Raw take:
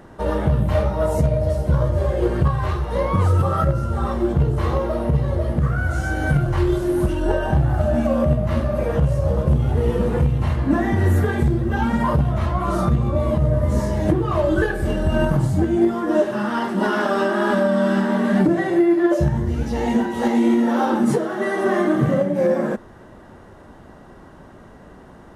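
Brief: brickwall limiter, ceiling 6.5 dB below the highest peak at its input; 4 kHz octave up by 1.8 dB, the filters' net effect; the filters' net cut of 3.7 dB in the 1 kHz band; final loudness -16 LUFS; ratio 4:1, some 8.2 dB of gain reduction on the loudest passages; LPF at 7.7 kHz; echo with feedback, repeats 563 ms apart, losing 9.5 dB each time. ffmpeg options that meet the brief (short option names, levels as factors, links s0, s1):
-af "lowpass=7700,equalizer=f=1000:t=o:g=-5,equalizer=f=4000:t=o:g=3,acompressor=threshold=0.0708:ratio=4,alimiter=limit=0.0944:level=0:latency=1,aecho=1:1:563|1126|1689|2252:0.335|0.111|0.0365|0.012,volume=4.47"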